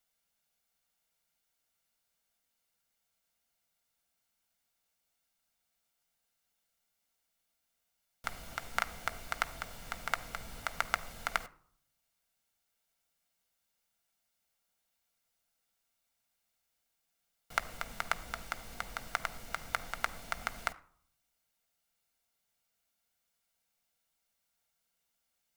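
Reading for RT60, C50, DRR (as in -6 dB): 0.60 s, 20.0 dB, 10.0 dB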